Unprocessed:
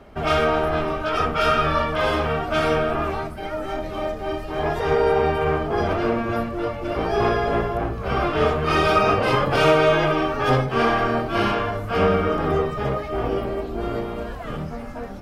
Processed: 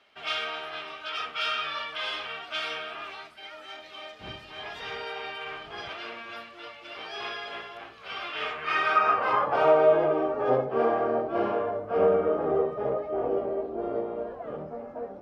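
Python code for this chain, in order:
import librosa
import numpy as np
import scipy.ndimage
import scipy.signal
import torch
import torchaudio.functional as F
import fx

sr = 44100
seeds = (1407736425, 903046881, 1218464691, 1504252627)

y = fx.dmg_wind(x, sr, seeds[0], corner_hz=96.0, level_db=-16.0, at=(4.19, 5.89), fade=0.02)
y = fx.filter_sweep_bandpass(y, sr, from_hz=3300.0, to_hz=530.0, start_s=8.23, end_s=10.01, q=1.7)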